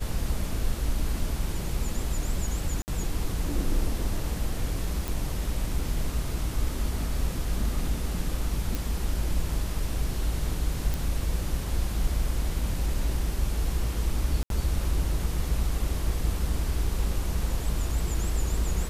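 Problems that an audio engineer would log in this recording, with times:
2.82–2.88 s: dropout 59 ms
5.08 s: pop
8.75 s: pop
10.94 s: pop
14.43–14.50 s: dropout 72 ms

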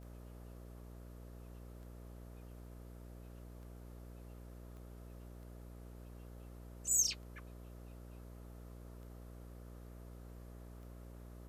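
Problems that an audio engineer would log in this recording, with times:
buzz 60 Hz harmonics 11 -52 dBFS
tick
4.77 s: pop -44 dBFS

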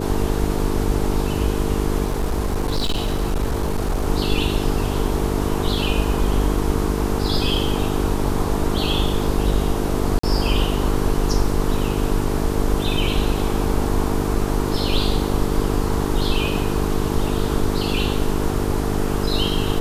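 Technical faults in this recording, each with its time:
buzz 50 Hz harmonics 9 -24 dBFS
2.04–4.08 s: clipped -17 dBFS
10.19–10.23 s: dropout 44 ms

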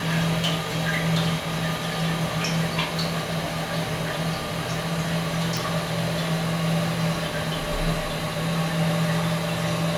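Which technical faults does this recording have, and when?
5.57 s: pop

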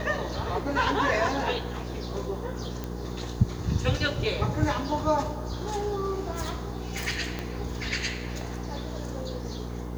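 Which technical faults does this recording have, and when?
hum 60 Hz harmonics 8 -35 dBFS
2.84 s: pop -19 dBFS
7.39 s: pop -17 dBFS

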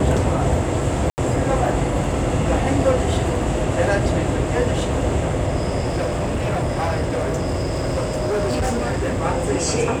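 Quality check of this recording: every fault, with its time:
1.10–1.18 s: dropout 79 ms
5.85–9.24 s: clipped -17.5 dBFS

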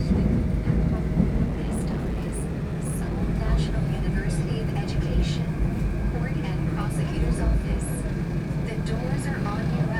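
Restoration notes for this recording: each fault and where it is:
1.45–3.22 s: clipped -23.5 dBFS

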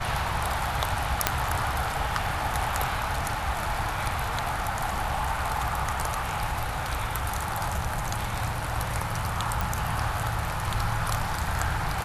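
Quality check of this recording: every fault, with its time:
1.27 s: pop -2 dBFS
9.61 s: pop

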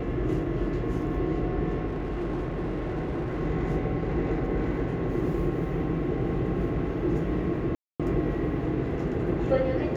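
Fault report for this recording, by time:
1.86–3.41 s: clipped -26.5 dBFS
7.75–8.00 s: dropout 246 ms

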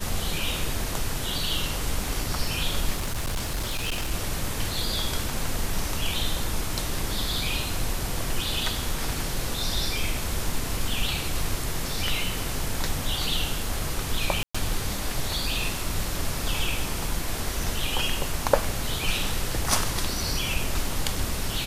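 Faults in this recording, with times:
2.96–4.12 s: clipped -24 dBFS
14.43–14.54 s: dropout 115 ms

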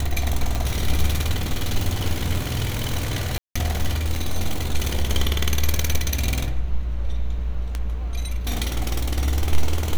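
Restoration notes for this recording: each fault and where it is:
tick
3.38–3.56 s: dropout 175 ms

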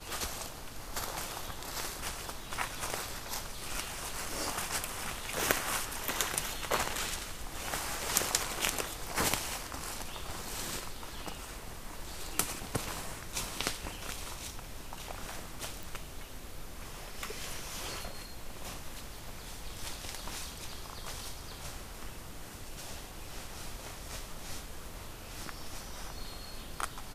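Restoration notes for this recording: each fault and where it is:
15.83 s: pop

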